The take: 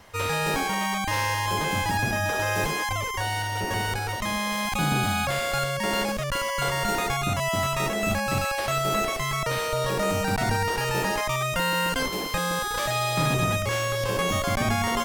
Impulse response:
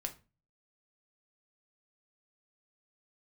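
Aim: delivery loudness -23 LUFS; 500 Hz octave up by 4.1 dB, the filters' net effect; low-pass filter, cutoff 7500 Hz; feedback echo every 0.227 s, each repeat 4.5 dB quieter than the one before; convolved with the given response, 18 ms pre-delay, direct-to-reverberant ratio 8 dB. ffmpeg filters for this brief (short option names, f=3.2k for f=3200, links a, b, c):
-filter_complex "[0:a]lowpass=7.5k,equalizer=f=500:t=o:g=5,aecho=1:1:227|454|681|908|1135|1362|1589|1816|2043:0.596|0.357|0.214|0.129|0.0772|0.0463|0.0278|0.0167|0.01,asplit=2[a][b];[1:a]atrim=start_sample=2205,adelay=18[c];[b][c]afir=irnorm=-1:irlink=0,volume=-7dB[d];[a][d]amix=inputs=2:normalize=0,volume=-0.5dB"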